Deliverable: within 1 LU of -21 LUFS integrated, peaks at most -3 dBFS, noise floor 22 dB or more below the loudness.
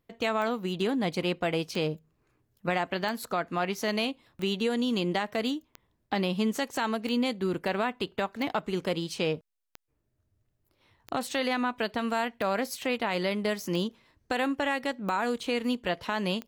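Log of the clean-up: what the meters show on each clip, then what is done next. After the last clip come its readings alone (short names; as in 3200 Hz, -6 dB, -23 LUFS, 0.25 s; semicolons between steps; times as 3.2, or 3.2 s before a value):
clicks 13; loudness -30.0 LUFS; peak -16.5 dBFS; loudness target -21.0 LUFS
-> de-click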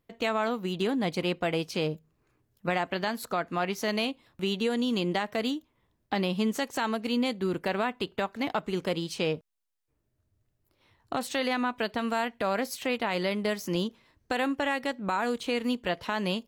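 clicks 0; loudness -30.0 LUFS; peak -16.5 dBFS; loudness target -21.0 LUFS
-> gain +9 dB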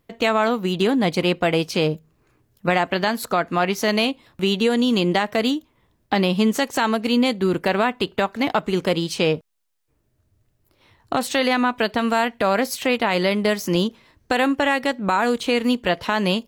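loudness -21.0 LUFS; peak -7.5 dBFS; noise floor -68 dBFS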